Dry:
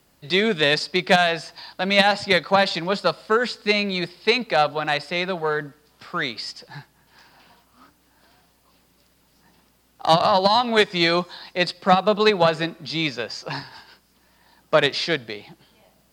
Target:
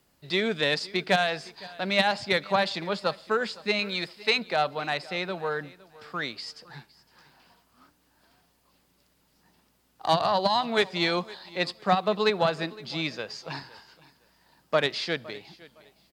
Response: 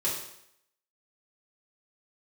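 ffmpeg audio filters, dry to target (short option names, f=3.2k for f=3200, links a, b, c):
-filter_complex "[0:a]asettb=1/sr,asplit=3[a][b][c];[a]atrim=end=3.794[d];[b]atrim=start=3.79:end=4.39,asetpts=PTS-STARTPTS,afade=t=in:d=0.004:c=qsin,afade=t=out:st=0.596:d=0.004:c=qsin,tiltshelf=f=740:g=-4[e];[c]atrim=start=4.386[f];[d][e]acrossfade=d=0.004:c1=hsin:c2=qsin[g];[g][f]acrossfade=d=0.004:c1=qsin:c2=hsin,aecho=1:1:512|1024:0.0891|0.0214,volume=-6.5dB"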